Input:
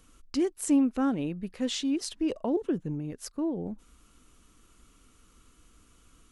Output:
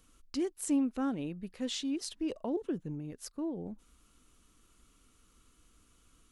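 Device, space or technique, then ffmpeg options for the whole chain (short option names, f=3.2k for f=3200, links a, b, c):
presence and air boost: -af "equalizer=f=3.9k:t=o:w=0.77:g=2,highshelf=f=9.9k:g=4.5,volume=-6dB"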